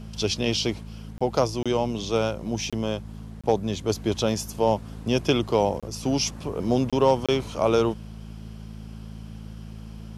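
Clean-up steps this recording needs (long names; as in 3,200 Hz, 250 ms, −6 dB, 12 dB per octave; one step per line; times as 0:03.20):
clipped peaks rebuilt −9 dBFS
hum removal 54.3 Hz, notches 4
repair the gap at 0:01.18/0:01.63/0:02.70/0:03.41/0:05.80/0:06.90/0:07.26, 26 ms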